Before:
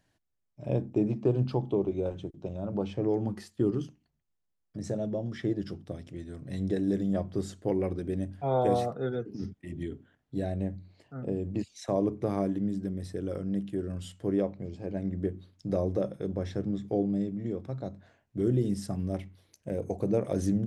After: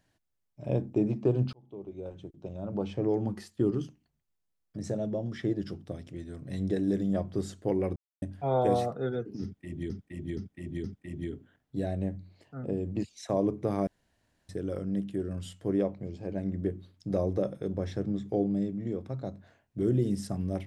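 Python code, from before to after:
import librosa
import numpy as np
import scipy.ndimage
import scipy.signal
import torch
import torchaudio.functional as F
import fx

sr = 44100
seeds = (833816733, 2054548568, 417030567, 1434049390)

y = fx.edit(x, sr, fx.fade_in_span(start_s=1.53, length_s=1.42),
    fx.silence(start_s=7.96, length_s=0.26),
    fx.repeat(start_s=9.43, length_s=0.47, count=4),
    fx.room_tone_fill(start_s=12.46, length_s=0.62), tone=tone)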